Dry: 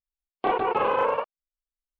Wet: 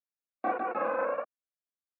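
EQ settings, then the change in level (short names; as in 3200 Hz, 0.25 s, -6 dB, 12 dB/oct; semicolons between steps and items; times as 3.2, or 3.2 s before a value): speaker cabinet 220–3200 Hz, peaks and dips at 420 Hz -5 dB, 650 Hz -3 dB, 1300 Hz -4 dB, 2000 Hz -7 dB; fixed phaser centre 620 Hz, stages 8; 0.0 dB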